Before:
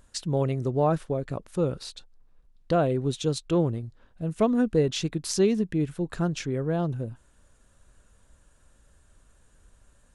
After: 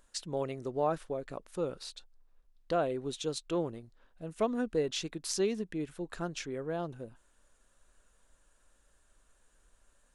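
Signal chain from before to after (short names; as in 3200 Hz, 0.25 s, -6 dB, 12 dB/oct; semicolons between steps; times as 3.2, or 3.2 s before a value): bell 100 Hz -14.5 dB 2.2 oct; gain -4.5 dB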